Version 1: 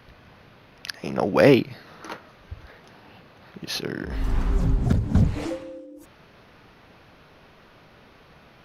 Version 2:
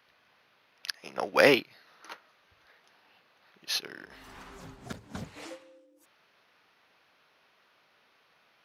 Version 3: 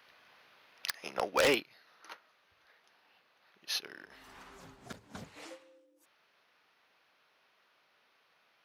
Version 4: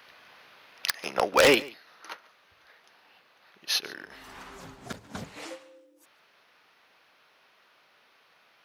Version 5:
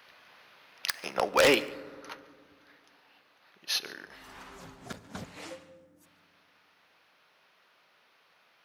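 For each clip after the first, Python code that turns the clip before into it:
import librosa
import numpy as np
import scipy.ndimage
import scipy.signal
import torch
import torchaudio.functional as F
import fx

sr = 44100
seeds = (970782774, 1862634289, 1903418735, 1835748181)

y1 = fx.highpass(x, sr, hz=1300.0, slope=6)
y1 = fx.upward_expand(y1, sr, threshold_db=-46.0, expansion=1.5)
y1 = y1 * librosa.db_to_amplitude(4.0)
y2 = fx.low_shelf(y1, sr, hz=250.0, db=-6.5)
y2 = fx.rider(y2, sr, range_db=4, speed_s=0.5)
y2 = 10.0 ** (-19.0 / 20.0) * (np.abs((y2 / 10.0 ** (-19.0 / 20.0) + 3.0) % 4.0 - 2.0) - 1.0)
y3 = y2 + 10.0 ** (-22.0 / 20.0) * np.pad(y2, (int(143 * sr / 1000.0), 0))[:len(y2)]
y3 = y3 * librosa.db_to_amplitude(8.0)
y4 = fx.rev_fdn(y3, sr, rt60_s=2.1, lf_ratio=1.4, hf_ratio=0.4, size_ms=33.0, drr_db=15.5)
y4 = y4 * librosa.db_to_amplitude(-3.0)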